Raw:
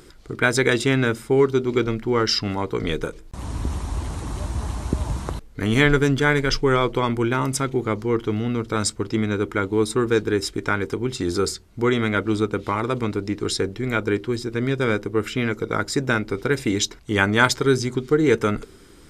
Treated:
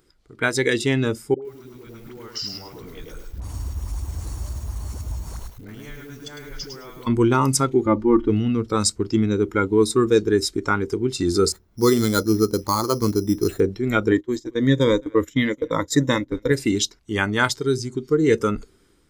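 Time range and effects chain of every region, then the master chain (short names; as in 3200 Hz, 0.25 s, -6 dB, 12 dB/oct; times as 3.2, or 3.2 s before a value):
1.34–7.07 compressor 20:1, threshold -31 dBFS + dispersion highs, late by 84 ms, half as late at 540 Hz + lo-fi delay 0.105 s, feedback 35%, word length 8-bit, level -4 dB
7.86–8.29 LPF 1600 Hz 6 dB/oct + comb 3.4 ms, depth 79%
11.52–13.6 LPF 2100 Hz + careless resampling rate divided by 8×, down none, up hold
14.11–16.52 ripple EQ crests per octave 1.1, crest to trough 9 dB + gate -30 dBFS, range -18 dB + echo 0.216 s -23 dB
whole clip: spectral noise reduction 11 dB; AGC gain up to 11 dB; gain -4 dB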